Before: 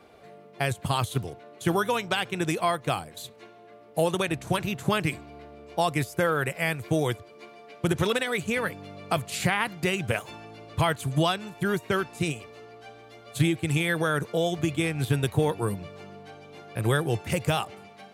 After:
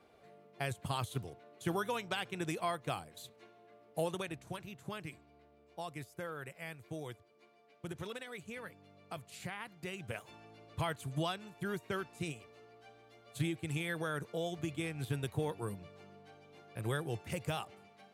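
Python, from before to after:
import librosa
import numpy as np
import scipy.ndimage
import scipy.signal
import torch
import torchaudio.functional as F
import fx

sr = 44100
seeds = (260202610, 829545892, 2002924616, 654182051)

y = fx.gain(x, sr, db=fx.line((4.0, -10.5), (4.63, -18.5), (9.68, -18.5), (10.47, -12.0)))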